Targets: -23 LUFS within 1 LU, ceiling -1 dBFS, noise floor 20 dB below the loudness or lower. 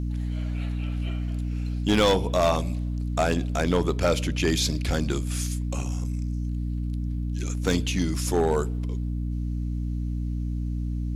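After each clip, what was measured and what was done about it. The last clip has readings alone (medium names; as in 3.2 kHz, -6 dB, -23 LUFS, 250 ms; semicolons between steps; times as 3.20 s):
clipped samples 0.5%; clipping level -14.5 dBFS; hum 60 Hz; highest harmonic 300 Hz; hum level -26 dBFS; loudness -27.0 LUFS; peak level -14.5 dBFS; loudness target -23.0 LUFS
-> clip repair -14.5 dBFS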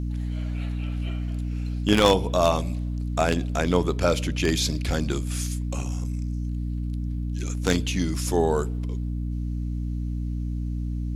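clipped samples 0.0%; hum 60 Hz; highest harmonic 300 Hz; hum level -26 dBFS
-> hum notches 60/120/180/240/300 Hz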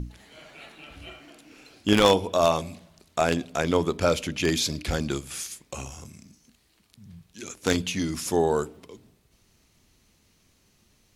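hum not found; loudness -25.5 LUFS; peak level -4.5 dBFS; loudness target -23.0 LUFS
-> trim +2.5 dB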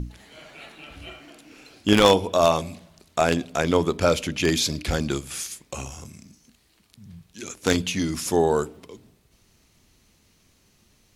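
loudness -23.0 LUFS; peak level -2.0 dBFS; noise floor -62 dBFS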